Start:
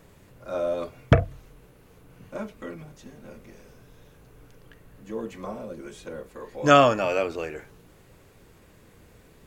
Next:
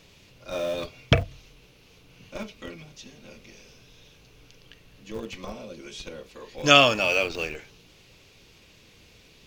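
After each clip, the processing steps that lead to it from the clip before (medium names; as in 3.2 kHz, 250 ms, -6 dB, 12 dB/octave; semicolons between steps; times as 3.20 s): high-order bell 3.8 kHz +14 dB; in parallel at -11 dB: Schmitt trigger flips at -26.5 dBFS; on the sum: trim -3.5 dB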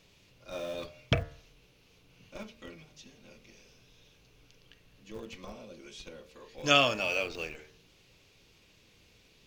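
de-hum 75.98 Hz, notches 28; trim -7.5 dB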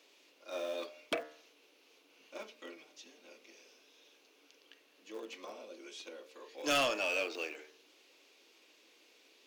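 Chebyshev high-pass 290 Hz, order 4; saturation -25.5 dBFS, distortion -7 dB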